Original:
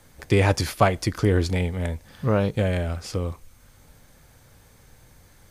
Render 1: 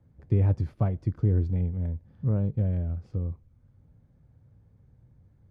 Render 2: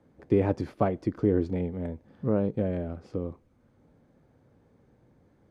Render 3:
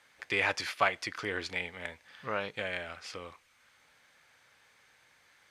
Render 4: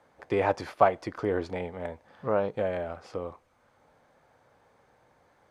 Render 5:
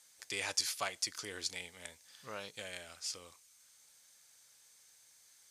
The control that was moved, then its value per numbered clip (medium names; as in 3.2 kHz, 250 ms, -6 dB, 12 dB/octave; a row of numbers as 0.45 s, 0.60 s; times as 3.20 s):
band-pass filter, frequency: 110 Hz, 290 Hz, 2.2 kHz, 760 Hz, 6.8 kHz